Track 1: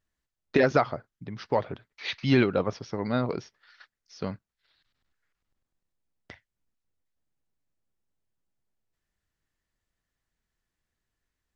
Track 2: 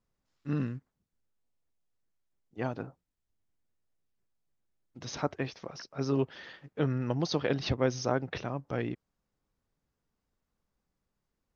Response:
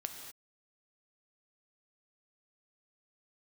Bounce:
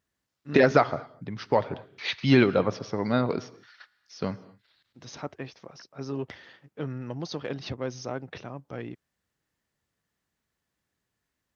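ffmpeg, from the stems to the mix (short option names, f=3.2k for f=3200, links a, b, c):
-filter_complex "[0:a]volume=0.5dB,asplit=3[a][b][c];[b]volume=-9dB[d];[1:a]asoftclip=type=tanh:threshold=-16dB,volume=-3.5dB[e];[c]apad=whole_len=509723[f];[e][f]sidechaincompress=threshold=-31dB:ratio=8:attack=16:release=948[g];[2:a]atrim=start_sample=2205[h];[d][h]afir=irnorm=-1:irlink=0[i];[a][g][i]amix=inputs=3:normalize=0,highpass=81"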